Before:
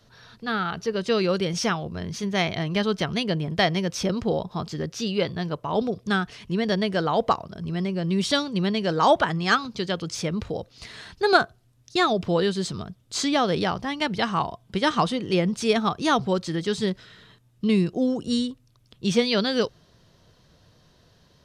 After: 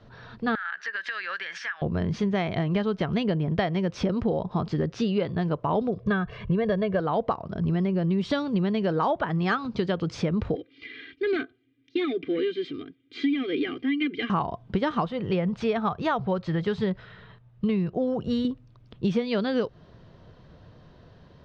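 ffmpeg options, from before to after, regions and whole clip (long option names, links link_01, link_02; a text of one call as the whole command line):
ffmpeg -i in.wav -filter_complex "[0:a]asettb=1/sr,asplit=3[link_01][link_02][link_03];[link_01]atrim=end=0.554[link_04];[link_02]atrim=start=0.55:end=1.82,asetpts=PTS-STARTPTS,afade=type=in:duration=0.004:curve=qsin,afade=type=out:start_time=1.266:duration=0.004:curve=qsin,highpass=frequency=1700:width_type=q:width=13,acompressor=threshold=-30dB:ratio=20:attack=3.2:release=140:knee=1:detection=peak[link_05];[link_03]atrim=start=1.816[link_06];[link_04][link_05]acrossfade=duration=0.004:curve1=hsin:curve2=qsin[link_07];[link_07][link_06]acrossfade=duration=0.004:curve1=qsin:curve2=hsin,asettb=1/sr,asplit=3[link_08][link_09][link_10];[link_08]atrim=end=6.004[link_11];[link_09]atrim=start=6:end=7,asetpts=PTS-STARTPTS,afade=type=in:duration=0.004:curve=qsin,afade=type=out:start_time=0.996:duration=0.004:curve=qsin,bass=frequency=250:gain=3,treble=frequency=4000:gain=-12,aecho=1:1:1.8:0.81,atrim=end_sample=44100[link_12];[link_10]atrim=start=6.996[link_13];[link_11][link_12]acrossfade=duration=0.004:curve1=hsin:curve2=qsin[link_14];[link_14][link_13]acrossfade=duration=0.004:curve1=qsin:curve2=hsin,asettb=1/sr,asplit=3[link_15][link_16][link_17];[link_15]atrim=end=10.554[link_18];[link_16]atrim=start=10.55:end=14.3,asetpts=PTS-STARTPTS,afade=type=in:duration=0.004:curve=qsin,afade=type=out:start_time=3.746:duration=0.004:curve=qsin,aecho=1:1:2.5:0.95,atrim=end_sample=165375,asplit=2[link_19][link_20];[link_20]highpass=frequency=720:poles=1,volume=17dB,asoftclip=type=tanh:threshold=-3.5dB[link_21];[link_19][link_21]amix=inputs=2:normalize=0,lowpass=frequency=3100:poles=1,volume=-6dB,asplit=3[link_22][link_23][link_24];[link_22]bandpass=frequency=270:width_type=q:width=8,volume=0dB[link_25];[link_23]bandpass=frequency=2290:width_type=q:width=8,volume=-6dB[link_26];[link_24]bandpass=frequency=3010:width_type=q:width=8,volume=-9dB[link_27];[link_25][link_26][link_27]amix=inputs=3:normalize=0[link_28];[link_17]atrim=start=14.296[link_29];[link_18][link_28]acrossfade=duration=0.004:curve1=hsin:curve2=qsin[link_30];[link_30][link_29]acrossfade=duration=0.004:curve1=qsin:curve2=hsin,asettb=1/sr,asplit=3[link_31][link_32][link_33];[link_31]atrim=end=15.054[link_34];[link_32]atrim=start=15.05:end=18.45,asetpts=PTS-STARTPTS,afade=type=in:duration=0.004:curve=qsin,afade=type=out:start_time=3.396:duration=0.004:curve=qsin,lowpass=frequency=3200:poles=1,equalizer=frequency=290:width_type=o:width=0.88:gain=-11[link_35];[link_33]atrim=start=18.446[link_36];[link_34][link_35]acrossfade=duration=0.004:curve1=hsin:curve2=qsin[link_37];[link_37][link_36]acrossfade=duration=0.004:curve1=qsin:curve2=hsin,lowpass=3600,highshelf=frequency=2100:gain=-10,acompressor=threshold=-29dB:ratio=10,volume=7.5dB" out.wav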